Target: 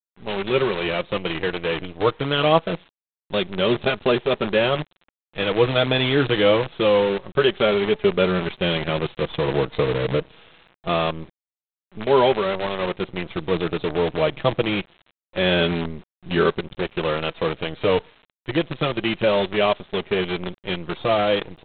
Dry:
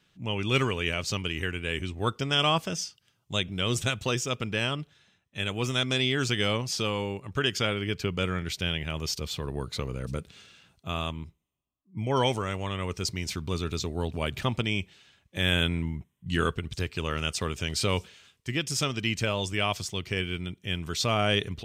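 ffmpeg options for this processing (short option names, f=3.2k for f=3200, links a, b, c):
-af "equalizer=f=530:t=o:w=1.9:g=13,dynaudnorm=f=150:g=11:m=11dB,flanger=delay=4.8:depth=1.8:regen=11:speed=0.25:shape=triangular,aresample=8000,acrusher=bits=5:dc=4:mix=0:aa=0.000001,aresample=44100,volume=-1dB"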